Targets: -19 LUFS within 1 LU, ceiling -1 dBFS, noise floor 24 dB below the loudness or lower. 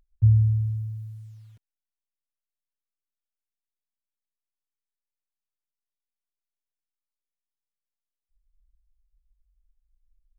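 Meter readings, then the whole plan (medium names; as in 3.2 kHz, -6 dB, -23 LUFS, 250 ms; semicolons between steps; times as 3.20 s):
loudness -22.5 LUFS; peak level -10.0 dBFS; loudness target -19.0 LUFS
-> trim +3.5 dB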